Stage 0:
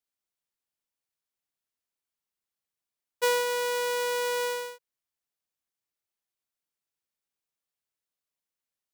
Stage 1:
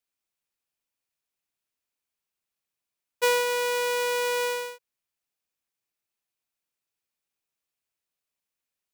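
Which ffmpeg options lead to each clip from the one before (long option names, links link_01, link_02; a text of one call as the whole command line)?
ffmpeg -i in.wav -af "equalizer=frequency=2500:width_type=o:width=0.21:gain=5,volume=2dB" out.wav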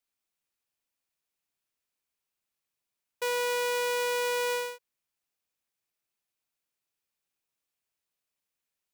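ffmpeg -i in.wav -af "alimiter=limit=-23.5dB:level=0:latency=1" out.wav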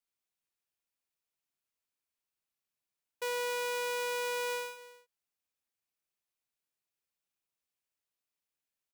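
ffmpeg -i in.wav -af "aecho=1:1:282:0.15,volume=-5dB" out.wav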